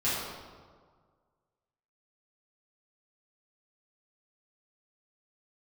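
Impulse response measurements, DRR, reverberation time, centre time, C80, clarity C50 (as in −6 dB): −12.0 dB, 1.7 s, 102 ms, 1.0 dB, −1.5 dB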